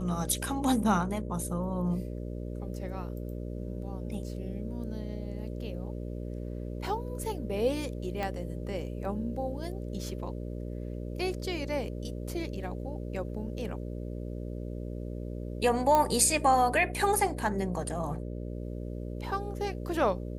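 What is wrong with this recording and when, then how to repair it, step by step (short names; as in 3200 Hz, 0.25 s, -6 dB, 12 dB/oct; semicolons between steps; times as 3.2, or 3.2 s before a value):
buzz 60 Hz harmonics 10 -37 dBFS
8.23 pop -20 dBFS
15.95 pop -12 dBFS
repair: de-click; de-hum 60 Hz, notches 10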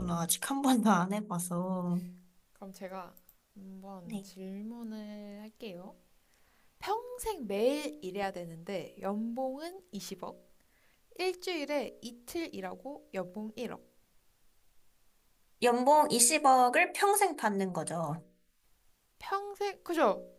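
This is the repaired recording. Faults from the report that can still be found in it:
8.23 pop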